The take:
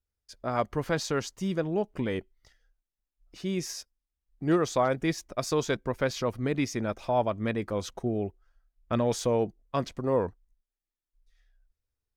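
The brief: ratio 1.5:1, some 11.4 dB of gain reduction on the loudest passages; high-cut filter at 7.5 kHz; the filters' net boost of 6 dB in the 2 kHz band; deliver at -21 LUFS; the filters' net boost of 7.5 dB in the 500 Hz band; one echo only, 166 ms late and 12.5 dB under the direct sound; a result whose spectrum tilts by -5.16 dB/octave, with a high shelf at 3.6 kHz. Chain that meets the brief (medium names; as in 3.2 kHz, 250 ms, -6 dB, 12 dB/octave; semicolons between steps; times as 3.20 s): low-pass 7.5 kHz; peaking EQ 500 Hz +8.5 dB; peaking EQ 2 kHz +6 dB; treble shelf 3.6 kHz +4.5 dB; compression 1.5:1, threshold -48 dBFS; delay 166 ms -12.5 dB; trim +13.5 dB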